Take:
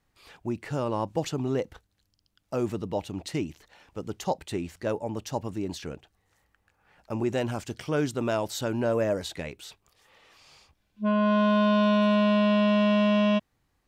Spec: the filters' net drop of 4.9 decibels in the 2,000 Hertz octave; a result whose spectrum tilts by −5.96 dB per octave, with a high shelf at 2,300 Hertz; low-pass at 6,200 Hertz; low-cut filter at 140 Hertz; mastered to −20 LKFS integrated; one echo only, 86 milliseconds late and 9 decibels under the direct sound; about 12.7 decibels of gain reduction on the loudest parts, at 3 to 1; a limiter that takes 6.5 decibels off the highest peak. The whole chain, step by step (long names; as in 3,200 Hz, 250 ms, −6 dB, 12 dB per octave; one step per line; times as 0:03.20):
high-pass filter 140 Hz
low-pass filter 6,200 Hz
parametric band 2,000 Hz −5.5 dB
high-shelf EQ 2,300 Hz −3.5 dB
downward compressor 3 to 1, threshold −39 dBFS
brickwall limiter −31 dBFS
single-tap delay 86 ms −9 dB
level +19 dB